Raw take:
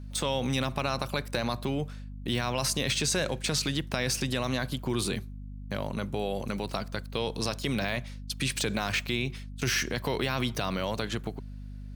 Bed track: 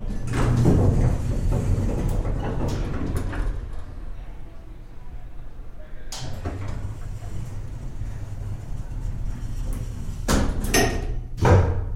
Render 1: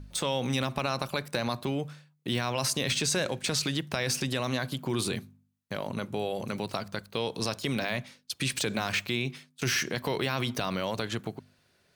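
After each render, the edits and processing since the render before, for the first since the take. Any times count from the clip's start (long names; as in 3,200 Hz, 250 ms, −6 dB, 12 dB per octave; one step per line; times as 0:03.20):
hum removal 50 Hz, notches 5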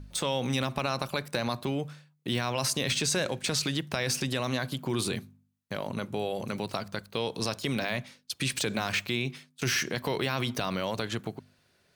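no processing that can be heard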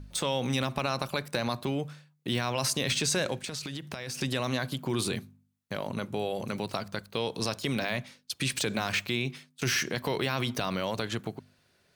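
0:03.37–0:04.19: downward compressor, threshold −33 dBFS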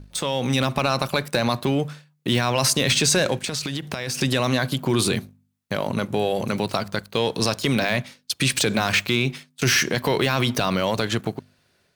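automatic gain control gain up to 5.5 dB
leveller curve on the samples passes 1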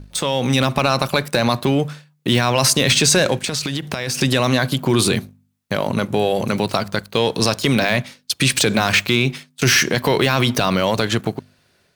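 level +4.5 dB
brickwall limiter −3 dBFS, peak gain reduction 1 dB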